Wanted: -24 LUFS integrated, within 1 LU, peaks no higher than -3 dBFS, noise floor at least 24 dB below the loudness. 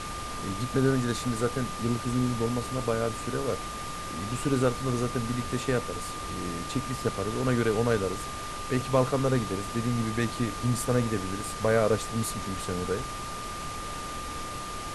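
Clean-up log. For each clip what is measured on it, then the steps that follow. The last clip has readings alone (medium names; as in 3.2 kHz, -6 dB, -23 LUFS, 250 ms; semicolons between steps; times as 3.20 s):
steady tone 1.2 kHz; tone level -37 dBFS; noise floor -36 dBFS; noise floor target -54 dBFS; loudness -29.5 LUFS; peak level -10.5 dBFS; loudness target -24.0 LUFS
-> band-stop 1.2 kHz, Q 30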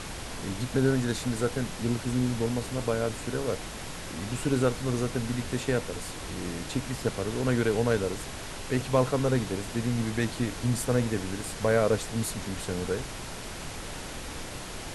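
steady tone not found; noise floor -39 dBFS; noise floor target -54 dBFS
-> noise print and reduce 15 dB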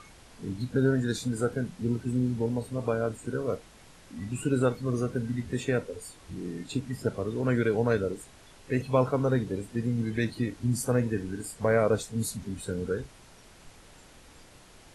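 noise floor -54 dBFS; loudness -29.5 LUFS; peak level -10.5 dBFS; loudness target -24.0 LUFS
-> trim +5.5 dB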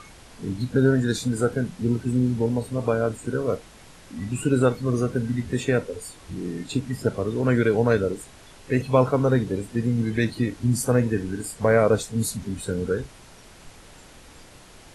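loudness -24.0 LUFS; peak level -5.0 dBFS; noise floor -48 dBFS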